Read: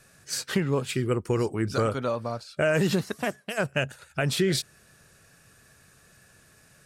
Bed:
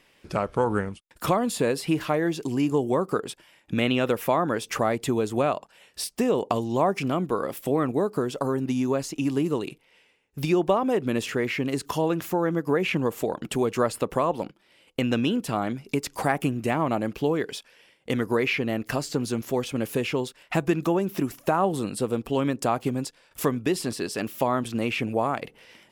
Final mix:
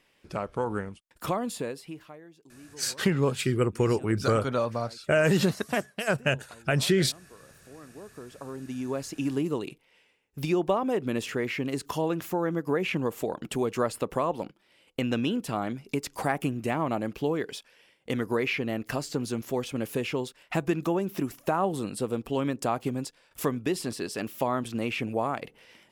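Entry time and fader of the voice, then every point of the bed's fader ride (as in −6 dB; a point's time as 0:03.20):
2.50 s, +1.0 dB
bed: 0:01.52 −6 dB
0:02.29 −26.5 dB
0:07.65 −26.5 dB
0:09.12 −3.5 dB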